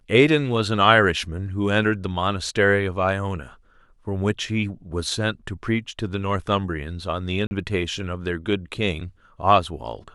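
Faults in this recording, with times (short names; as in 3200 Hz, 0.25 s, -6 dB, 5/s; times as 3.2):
7.47–7.51 gap 40 ms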